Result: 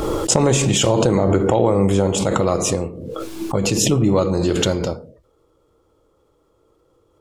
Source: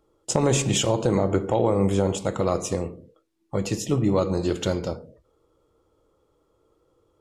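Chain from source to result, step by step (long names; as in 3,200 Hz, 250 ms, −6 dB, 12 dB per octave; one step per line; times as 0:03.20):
0:02.74–0:04.09: notch filter 1,900 Hz, Q 9.1
background raised ahead of every attack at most 26 dB per second
level +4.5 dB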